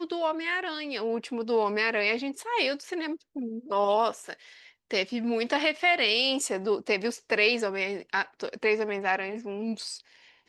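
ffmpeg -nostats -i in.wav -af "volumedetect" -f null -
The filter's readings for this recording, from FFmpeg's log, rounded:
mean_volume: -28.8 dB
max_volume: -10.5 dB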